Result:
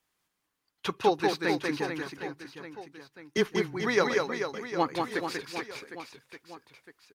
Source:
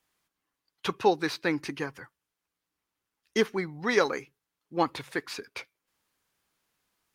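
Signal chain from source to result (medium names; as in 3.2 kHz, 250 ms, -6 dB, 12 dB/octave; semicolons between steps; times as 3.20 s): 3.37–3.77 s: frequency shift -16 Hz; reverse bouncing-ball echo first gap 190 ms, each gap 1.3×, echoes 5; trim -1.5 dB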